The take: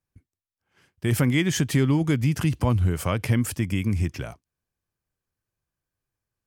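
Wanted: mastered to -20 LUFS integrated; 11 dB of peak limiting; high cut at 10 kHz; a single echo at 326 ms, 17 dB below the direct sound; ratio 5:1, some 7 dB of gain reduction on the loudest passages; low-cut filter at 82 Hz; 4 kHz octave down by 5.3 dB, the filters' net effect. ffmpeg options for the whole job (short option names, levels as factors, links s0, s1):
-af "highpass=82,lowpass=10000,equalizer=f=4000:t=o:g=-7.5,acompressor=threshold=0.0562:ratio=5,alimiter=level_in=1.26:limit=0.0631:level=0:latency=1,volume=0.794,aecho=1:1:326:0.141,volume=5.96"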